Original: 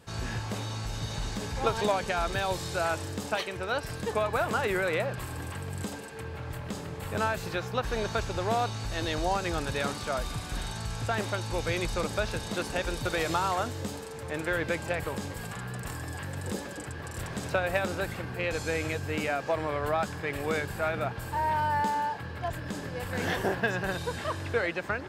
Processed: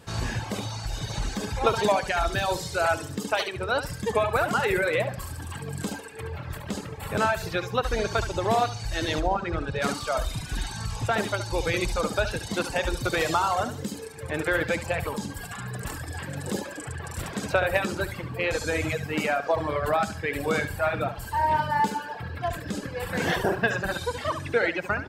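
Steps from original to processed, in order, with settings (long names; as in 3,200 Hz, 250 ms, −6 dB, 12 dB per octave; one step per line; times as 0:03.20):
0:09.20–0:09.82: head-to-tape spacing loss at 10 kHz 21 dB
on a send: repeating echo 71 ms, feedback 42%, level −5.5 dB
on the sum: reverb reduction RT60 1.7 s
level +5 dB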